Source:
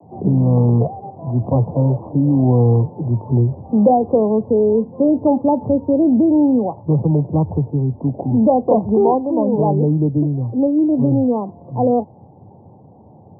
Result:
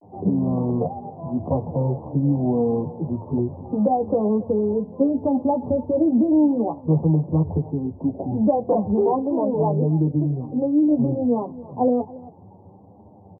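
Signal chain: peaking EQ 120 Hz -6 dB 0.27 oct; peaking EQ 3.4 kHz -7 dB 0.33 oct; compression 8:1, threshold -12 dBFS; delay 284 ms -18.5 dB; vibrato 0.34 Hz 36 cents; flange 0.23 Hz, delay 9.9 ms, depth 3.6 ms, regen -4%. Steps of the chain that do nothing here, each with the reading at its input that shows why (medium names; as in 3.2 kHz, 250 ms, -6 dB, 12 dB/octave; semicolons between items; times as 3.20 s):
peaking EQ 3.4 kHz: input has nothing above 1 kHz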